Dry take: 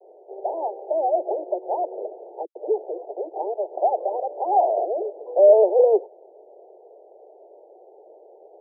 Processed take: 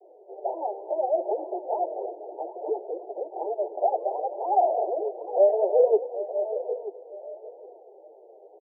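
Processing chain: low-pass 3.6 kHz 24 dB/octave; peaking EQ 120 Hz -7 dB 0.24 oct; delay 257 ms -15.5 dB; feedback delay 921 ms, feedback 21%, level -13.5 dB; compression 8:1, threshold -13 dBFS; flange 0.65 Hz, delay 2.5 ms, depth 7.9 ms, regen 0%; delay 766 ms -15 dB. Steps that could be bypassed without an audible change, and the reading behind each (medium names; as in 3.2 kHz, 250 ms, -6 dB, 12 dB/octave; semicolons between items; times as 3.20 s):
low-pass 3.6 kHz: input has nothing above 960 Hz; peaking EQ 120 Hz: input has nothing below 300 Hz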